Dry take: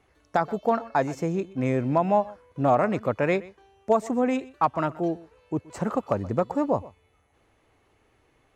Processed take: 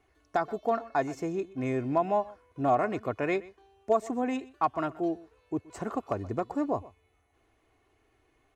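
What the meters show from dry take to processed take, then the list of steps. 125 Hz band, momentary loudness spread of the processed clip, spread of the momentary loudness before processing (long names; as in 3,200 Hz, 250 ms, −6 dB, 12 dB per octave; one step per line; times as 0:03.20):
−8.5 dB, 8 LU, 7 LU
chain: comb filter 2.8 ms, depth 47%
level −5.5 dB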